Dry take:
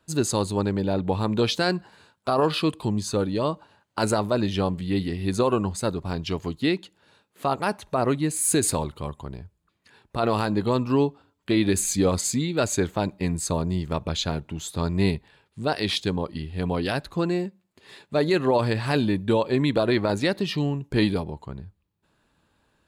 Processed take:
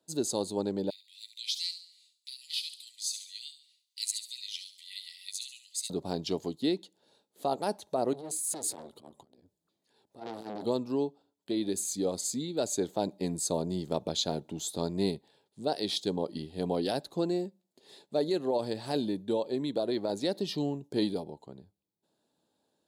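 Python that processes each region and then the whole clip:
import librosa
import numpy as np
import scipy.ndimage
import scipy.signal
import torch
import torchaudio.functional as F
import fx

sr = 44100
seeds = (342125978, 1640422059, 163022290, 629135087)

y = fx.chain(x, sr, fx.brickwall_highpass(low_hz=1900.0),
    fx.echo_wet_highpass(ms=70, feedback_pct=43, hz=4100.0, wet_db=-8.0), at=(0.9, 5.9))
y = fx.chain(y, sr, fx.transient(attack_db=-11, sustain_db=5),
    fx.transformer_sat(knee_hz=2200.0), at=(8.13, 10.65))
y = scipy.signal.sosfilt(scipy.signal.butter(2, 240.0, 'highpass', fs=sr, output='sos'), y)
y = fx.band_shelf(y, sr, hz=1700.0, db=-12.5, octaves=1.7)
y = fx.rider(y, sr, range_db=4, speed_s=0.5)
y = y * librosa.db_to_amplitude(-4.0)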